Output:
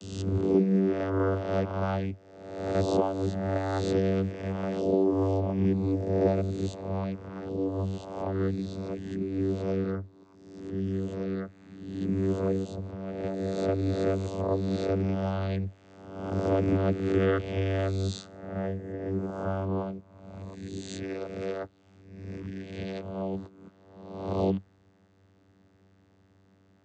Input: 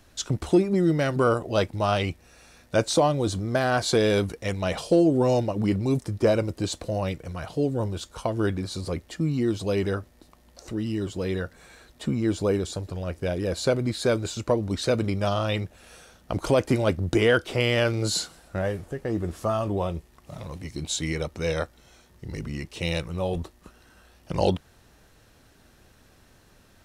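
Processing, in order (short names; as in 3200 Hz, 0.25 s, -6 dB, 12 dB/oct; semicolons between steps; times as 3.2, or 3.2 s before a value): spectral swells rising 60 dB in 1.06 s; vocoder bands 16, saw 96.1 Hz; gain -5 dB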